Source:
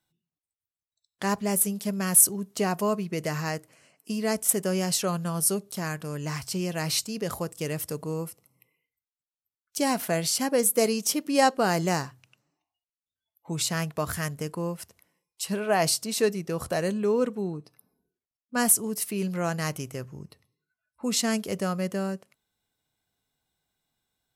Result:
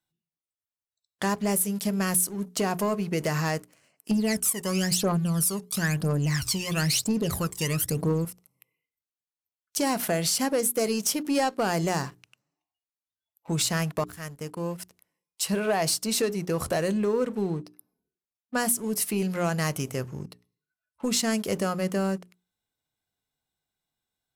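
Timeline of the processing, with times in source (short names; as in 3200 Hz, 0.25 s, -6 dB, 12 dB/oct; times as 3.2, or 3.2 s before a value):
4.11–8.25 phaser 1 Hz, delay 1.1 ms, feedback 75%
14.04–15.43 fade in linear, from -19 dB
whole clip: compressor 4:1, threshold -27 dBFS; sample leveller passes 2; notches 60/120/180/240/300/360/420 Hz; gain -2 dB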